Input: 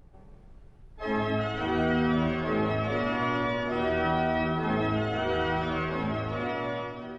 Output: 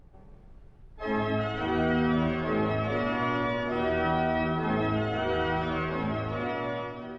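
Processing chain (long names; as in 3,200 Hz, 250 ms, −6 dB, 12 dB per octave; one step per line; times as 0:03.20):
high-shelf EQ 5,600 Hz −6 dB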